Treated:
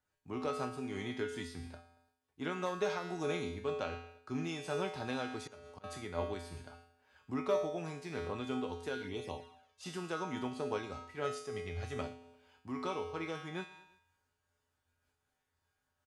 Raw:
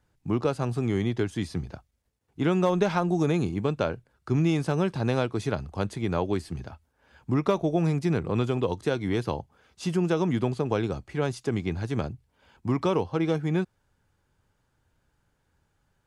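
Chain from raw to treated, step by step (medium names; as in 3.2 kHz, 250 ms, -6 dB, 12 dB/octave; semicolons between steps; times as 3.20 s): feedback comb 85 Hz, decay 0.72 s, harmonics odd, mix 90%; 5.28–5.84 s: slow attack 383 ms; 11.24–12.01 s: comb 1.6 ms, depth 50%; feedback delay 115 ms, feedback 49%, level -22 dB; 9.02–9.86 s: touch-sensitive flanger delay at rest 2.3 ms, full sweep at -39 dBFS; bass shelf 330 Hz -11.5 dB; de-hum 233.9 Hz, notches 32; random flutter of the level, depth 60%; trim +11 dB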